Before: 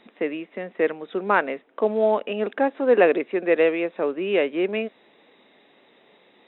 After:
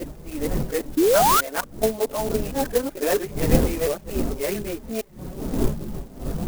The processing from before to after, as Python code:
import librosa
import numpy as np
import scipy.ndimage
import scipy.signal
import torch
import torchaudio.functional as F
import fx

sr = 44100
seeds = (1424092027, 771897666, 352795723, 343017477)

y = fx.local_reverse(x, sr, ms=227.0)
y = fx.dmg_wind(y, sr, seeds[0], corner_hz=270.0, level_db=-25.0)
y = fx.chorus_voices(y, sr, voices=6, hz=0.4, base_ms=17, depth_ms=3.9, mix_pct=70)
y = fx.spec_paint(y, sr, seeds[1], shape='rise', start_s=0.97, length_s=0.44, low_hz=290.0, high_hz=1500.0, level_db=-15.0)
y = fx.clock_jitter(y, sr, seeds[2], jitter_ms=0.079)
y = F.gain(torch.from_numpy(y), -1.5).numpy()